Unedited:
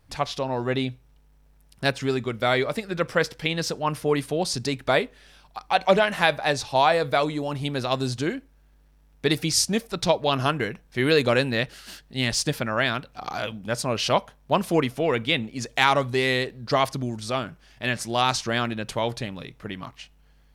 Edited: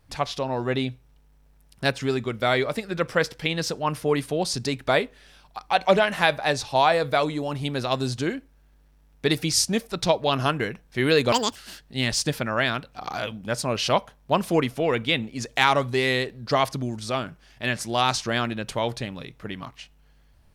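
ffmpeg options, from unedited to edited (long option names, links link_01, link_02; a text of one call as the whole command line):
ffmpeg -i in.wav -filter_complex "[0:a]asplit=3[link_01][link_02][link_03];[link_01]atrim=end=11.324[link_04];[link_02]atrim=start=11.32:end=11.76,asetpts=PTS-STARTPTS,asetrate=81585,aresample=44100[link_05];[link_03]atrim=start=11.756[link_06];[link_04][link_05]acrossfade=duration=0.004:curve1=hsin:curve2=hsin[link_07];[link_07][link_06]acrossfade=duration=0.004:curve1=hsin:curve2=hsin" out.wav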